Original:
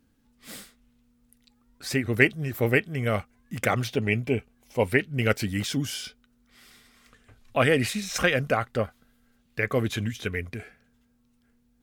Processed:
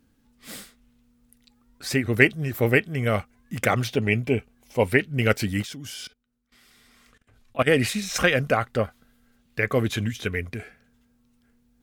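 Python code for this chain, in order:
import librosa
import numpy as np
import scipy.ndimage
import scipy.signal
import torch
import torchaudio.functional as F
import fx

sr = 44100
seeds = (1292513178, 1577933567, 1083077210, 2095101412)

y = fx.level_steps(x, sr, step_db=20, at=(5.61, 7.66), fade=0.02)
y = y * 10.0 ** (2.5 / 20.0)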